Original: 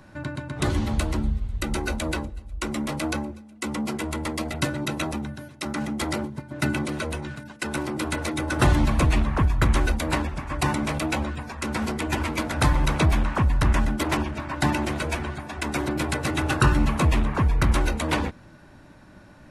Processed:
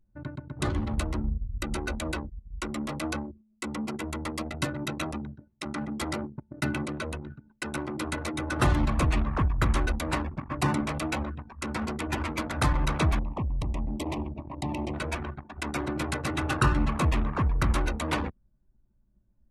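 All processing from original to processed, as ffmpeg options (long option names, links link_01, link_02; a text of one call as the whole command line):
ffmpeg -i in.wav -filter_complex "[0:a]asettb=1/sr,asplit=3[link_01][link_02][link_03];[link_01]atrim=end=10.314[link_04];[link_02]atrim=start=10.31:end=10.81,asetpts=PTS-STARTPTS,afade=type=in:duration=0.004:curve=qsin,afade=type=out:start_time=0.496:duration=0.004:curve=qsin,highpass=120,lowshelf=frequency=330:gain=7[link_05];[link_03]atrim=start=10.806[link_06];[link_04][link_05]acrossfade=duration=0.004:curve1=hsin:curve2=qsin[link_07];[link_07][link_06]acrossfade=duration=0.004:curve1=qsin:curve2=hsin,asettb=1/sr,asplit=3[link_08][link_09][link_10];[link_08]atrim=end=13.194[link_11];[link_09]atrim=start=13.19:end=14.94,asetpts=PTS-STARTPTS,afade=type=in:duration=0.004:curve=qsin,afade=type=out:start_time=1.746:duration=0.004:curve=qsin,acompressor=threshold=-21dB:ratio=4:attack=3.2:release=140:knee=1:detection=peak,asuperstop=centerf=1500:order=4:qfactor=1.2,adynamicequalizer=threshold=0.00501:dfrequency=3000:dqfactor=0.7:tfrequency=3000:tqfactor=0.7:attack=5:release=100:ratio=0.375:range=2:mode=cutabove:tftype=highshelf[link_12];[link_10]atrim=start=14.936[link_13];[link_11][link_12]acrossfade=duration=0.004:curve1=hsin:curve2=qsin[link_14];[link_14][link_13]acrossfade=duration=0.004:curve1=qsin:curve2=hsin,adynamicequalizer=threshold=0.00562:dfrequency=1200:dqfactor=6.8:tfrequency=1200:tqfactor=6.8:attack=5:release=100:ratio=0.375:range=2.5:mode=boostabove:tftype=bell,anlmdn=39.8,volume=-4.5dB" out.wav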